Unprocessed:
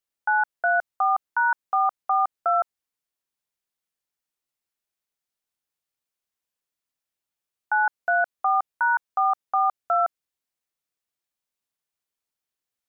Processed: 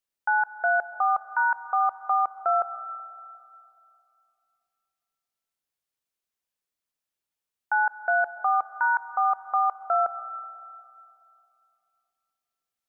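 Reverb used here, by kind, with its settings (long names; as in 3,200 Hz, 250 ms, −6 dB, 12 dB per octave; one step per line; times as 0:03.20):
comb and all-pass reverb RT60 2.6 s, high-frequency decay 0.85×, pre-delay 95 ms, DRR 13.5 dB
level −1.5 dB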